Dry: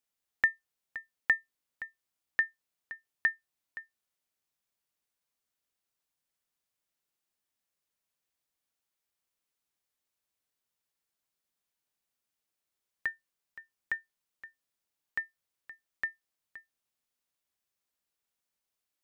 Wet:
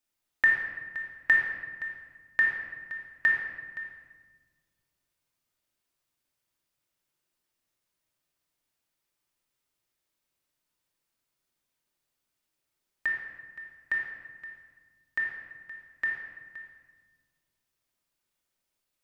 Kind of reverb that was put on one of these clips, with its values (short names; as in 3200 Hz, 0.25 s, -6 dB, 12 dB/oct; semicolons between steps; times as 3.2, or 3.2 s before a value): shoebox room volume 1300 m³, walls mixed, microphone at 2.7 m